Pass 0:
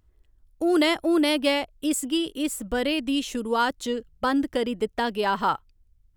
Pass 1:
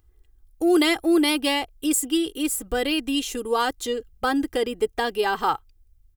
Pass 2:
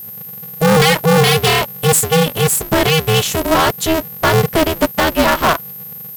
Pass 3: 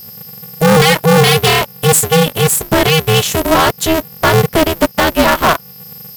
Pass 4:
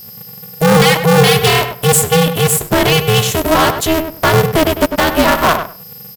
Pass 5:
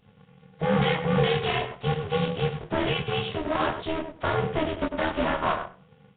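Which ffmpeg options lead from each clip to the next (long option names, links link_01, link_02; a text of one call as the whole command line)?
ffmpeg -i in.wav -af "highshelf=frequency=9100:gain=10,aecho=1:1:2.5:0.59" out.wav
ffmpeg -i in.wav -af "aeval=exprs='val(0)+0.00891*sin(2*PI*13000*n/s)':channel_layout=same,aeval=exprs='0.376*(cos(1*acos(clip(val(0)/0.376,-1,1)))-cos(1*PI/2))+0.133*(cos(5*acos(clip(val(0)/0.376,-1,1)))-cos(5*PI/2))+0.0188*(cos(8*acos(clip(val(0)/0.376,-1,1)))-cos(8*PI/2))':channel_layout=same,aeval=exprs='val(0)*sgn(sin(2*PI*160*n/s))':channel_layout=same,volume=3.5dB" out.wav
ffmpeg -i in.wav -filter_complex "[0:a]asplit=2[link_01][link_02];[link_02]alimiter=limit=-13dB:level=0:latency=1:release=407,volume=2dB[link_03];[link_01][link_03]amix=inputs=2:normalize=0,aeval=exprs='sgn(val(0))*max(abs(val(0))-0.0447,0)':channel_layout=same,volume=-1dB" out.wav
ffmpeg -i in.wav -filter_complex "[0:a]asplit=2[link_01][link_02];[link_02]adelay=99,lowpass=frequency=2100:poles=1,volume=-7.5dB,asplit=2[link_03][link_04];[link_04]adelay=99,lowpass=frequency=2100:poles=1,volume=0.19,asplit=2[link_05][link_06];[link_06]adelay=99,lowpass=frequency=2100:poles=1,volume=0.19[link_07];[link_01][link_03][link_05][link_07]amix=inputs=4:normalize=0,volume=-1dB" out.wav
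ffmpeg -i in.wav -af "flanger=delay=19.5:depth=2.8:speed=1.5,tremolo=f=76:d=0.462,volume=-8.5dB" -ar 8000 -c:a nellymoser out.flv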